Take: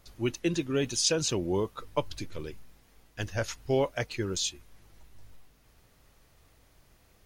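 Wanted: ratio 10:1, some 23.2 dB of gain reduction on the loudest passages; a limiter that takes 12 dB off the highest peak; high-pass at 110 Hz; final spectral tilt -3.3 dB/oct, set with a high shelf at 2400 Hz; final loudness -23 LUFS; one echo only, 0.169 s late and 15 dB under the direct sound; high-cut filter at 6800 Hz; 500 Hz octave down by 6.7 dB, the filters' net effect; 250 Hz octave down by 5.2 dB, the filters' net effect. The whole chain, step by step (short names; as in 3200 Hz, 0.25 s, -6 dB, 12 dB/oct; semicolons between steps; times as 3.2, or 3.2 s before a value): HPF 110 Hz; LPF 6800 Hz; bell 250 Hz -4 dB; bell 500 Hz -7.5 dB; high shelf 2400 Hz +5 dB; compressor 10:1, threshold -44 dBFS; limiter -39.5 dBFS; echo 0.169 s -15 dB; gain +29 dB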